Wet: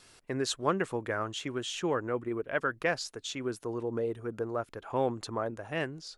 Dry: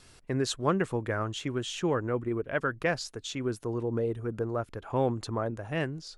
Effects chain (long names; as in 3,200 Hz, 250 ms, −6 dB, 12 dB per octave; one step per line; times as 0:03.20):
low-shelf EQ 180 Hz −11.5 dB